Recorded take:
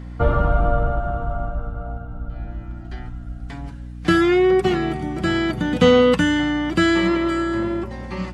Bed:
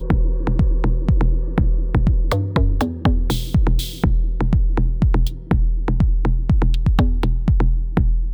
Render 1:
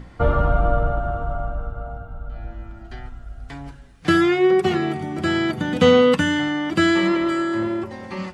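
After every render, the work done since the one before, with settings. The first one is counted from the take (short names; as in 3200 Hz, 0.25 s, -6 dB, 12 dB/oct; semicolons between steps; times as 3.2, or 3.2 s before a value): notches 60/120/180/240/300/360 Hz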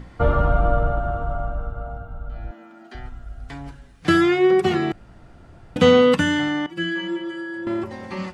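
2.51–2.95 steep high-pass 210 Hz; 4.92–5.76 room tone; 6.66–7.67 metallic resonator 170 Hz, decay 0.29 s, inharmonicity 0.008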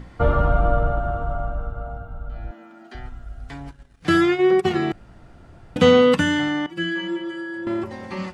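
3.5–4.76 transient shaper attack -2 dB, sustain -10 dB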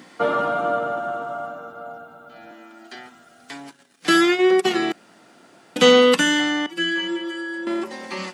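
HPF 220 Hz 24 dB/oct; high shelf 2700 Hz +12 dB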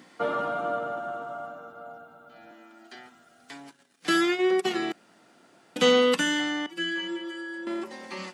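gain -7 dB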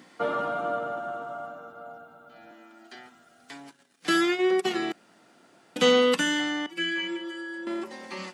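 6.75–7.17 bell 2300 Hz +13 dB 0.24 oct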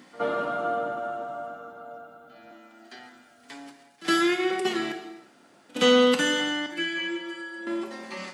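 pre-echo 66 ms -20.5 dB; non-linear reverb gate 0.4 s falling, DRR 5.5 dB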